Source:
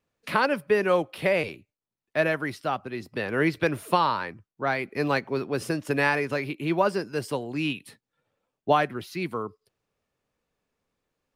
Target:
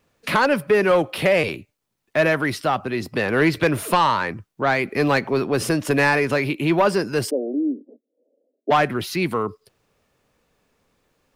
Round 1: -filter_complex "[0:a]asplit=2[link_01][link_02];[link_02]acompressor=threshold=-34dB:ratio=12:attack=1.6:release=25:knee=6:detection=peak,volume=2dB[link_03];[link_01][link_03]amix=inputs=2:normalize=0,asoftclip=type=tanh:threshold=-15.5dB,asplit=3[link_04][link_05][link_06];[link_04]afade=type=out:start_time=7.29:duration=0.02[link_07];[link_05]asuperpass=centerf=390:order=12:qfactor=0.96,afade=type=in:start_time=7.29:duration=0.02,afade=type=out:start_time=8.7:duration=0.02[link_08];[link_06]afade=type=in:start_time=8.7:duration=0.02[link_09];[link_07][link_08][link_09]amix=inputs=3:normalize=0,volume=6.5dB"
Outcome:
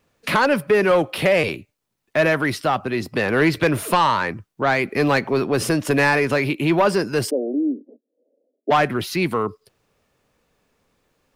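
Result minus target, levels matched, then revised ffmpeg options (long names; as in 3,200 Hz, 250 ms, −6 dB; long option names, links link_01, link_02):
downward compressor: peak gain reduction −5.5 dB
-filter_complex "[0:a]asplit=2[link_01][link_02];[link_02]acompressor=threshold=-40dB:ratio=12:attack=1.6:release=25:knee=6:detection=peak,volume=2dB[link_03];[link_01][link_03]amix=inputs=2:normalize=0,asoftclip=type=tanh:threshold=-15.5dB,asplit=3[link_04][link_05][link_06];[link_04]afade=type=out:start_time=7.29:duration=0.02[link_07];[link_05]asuperpass=centerf=390:order=12:qfactor=0.96,afade=type=in:start_time=7.29:duration=0.02,afade=type=out:start_time=8.7:duration=0.02[link_08];[link_06]afade=type=in:start_time=8.7:duration=0.02[link_09];[link_07][link_08][link_09]amix=inputs=3:normalize=0,volume=6.5dB"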